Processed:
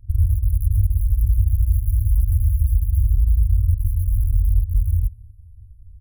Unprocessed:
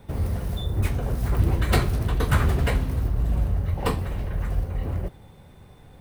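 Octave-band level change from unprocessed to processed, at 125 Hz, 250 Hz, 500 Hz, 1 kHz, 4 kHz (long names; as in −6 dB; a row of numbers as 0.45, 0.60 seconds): +5.5 dB, below −15 dB, below −40 dB, below −40 dB, below −40 dB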